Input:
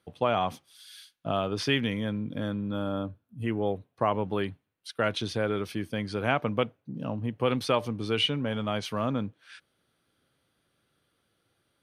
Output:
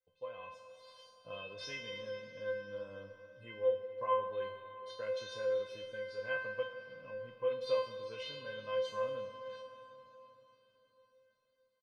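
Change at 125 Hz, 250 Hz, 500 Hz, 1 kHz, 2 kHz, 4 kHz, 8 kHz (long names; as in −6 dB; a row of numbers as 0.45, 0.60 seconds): −24.0 dB, −27.5 dB, −5.5 dB, −10.5 dB, −8.5 dB, −14.5 dB, below −10 dB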